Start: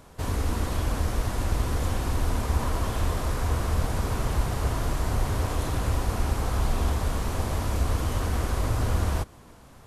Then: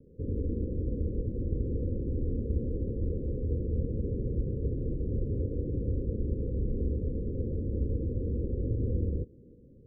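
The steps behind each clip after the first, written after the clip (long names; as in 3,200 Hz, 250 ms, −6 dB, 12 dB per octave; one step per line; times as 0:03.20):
Butterworth low-pass 520 Hz 96 dB per octave
low-shelf EQ 86 Hz −8.5 dB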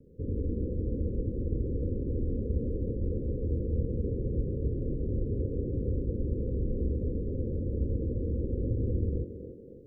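feedback echo with a high-pass in the loop 275 ms, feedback 68%, high-pass 300 Hz, level −4.5 dB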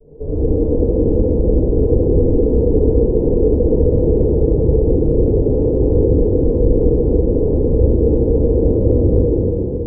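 lower of the sound and its delayed copy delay 0.44 ms
low-pass with resonance 470 Hz, resonance Q 4
convolution reverb RT60 2.6 s, pre-delay 3 ms, DRR −18 dB
level −9.5 dB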